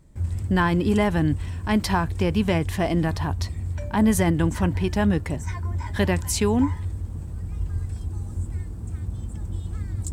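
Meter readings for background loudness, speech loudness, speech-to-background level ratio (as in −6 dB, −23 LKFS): −31.0 LKFS, −23.5 LKFS, 7.5 dB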